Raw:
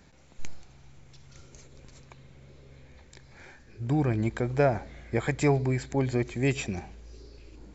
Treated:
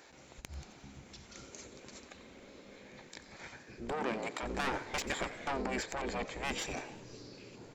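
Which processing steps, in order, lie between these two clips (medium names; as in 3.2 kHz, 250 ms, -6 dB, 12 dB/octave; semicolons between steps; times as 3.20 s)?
6.02–6.62 s: treble shelf 4.5 kHz -9 dB; saturation -28 dBFS, distortion -8 dB; 4.94–5.47 s: reverse; frequency-shifting echo 90 ms, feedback 51%, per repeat +68 Hz, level -17 dB; spectral gate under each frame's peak -10 dB weak; 3.92–4.43 s: high-pass 150 Hz 12 dB/octave; trim +4.5 dB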